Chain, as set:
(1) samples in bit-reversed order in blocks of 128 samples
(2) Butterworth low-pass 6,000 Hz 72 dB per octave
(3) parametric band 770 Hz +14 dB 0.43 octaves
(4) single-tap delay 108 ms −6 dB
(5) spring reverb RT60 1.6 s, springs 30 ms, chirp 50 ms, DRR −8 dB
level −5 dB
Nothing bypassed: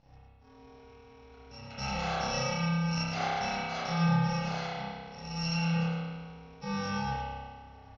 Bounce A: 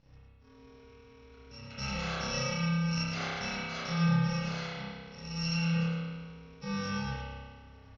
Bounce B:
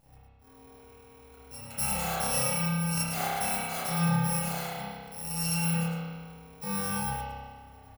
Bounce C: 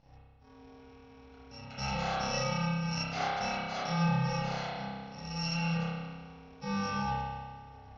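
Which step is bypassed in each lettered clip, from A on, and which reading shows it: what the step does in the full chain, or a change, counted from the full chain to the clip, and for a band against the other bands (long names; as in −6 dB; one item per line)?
3, 1 kHz band −6.5 dB
2, change in momentary loudness spread −1 LU
4, change in integrated loudness −1.5 LU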